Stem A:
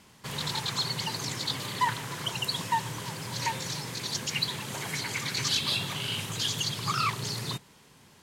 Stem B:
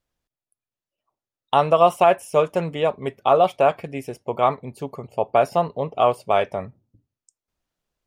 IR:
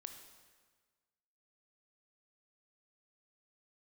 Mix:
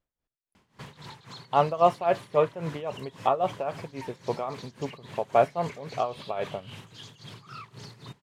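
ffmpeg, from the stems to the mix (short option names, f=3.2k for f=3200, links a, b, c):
-filter_complex "[0:a]acompressor=threshold=-32dB:ratio=6,alimiter=level_in=4.5dB:limit=-24dB:level=0:latency=1:release=20,volume=-4.5dB,adelay=550,volume=-1.5dB[a];[1:a]volume=-2dB[b];[a][b]amix=inputs=2:normalize=0,lowpass=f=2.3k:p=1,tremolo=f=3.7:d=0.82"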